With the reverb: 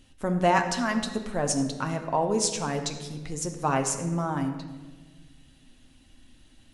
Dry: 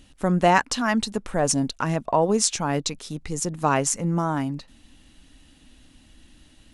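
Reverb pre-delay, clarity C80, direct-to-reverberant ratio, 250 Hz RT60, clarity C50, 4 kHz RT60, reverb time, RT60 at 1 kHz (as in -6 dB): 8 ms, 10.0 dB, 4.0 dB, 1.8 s, 8.5 dB, 1.0 s, 1.4 s, 1.2 s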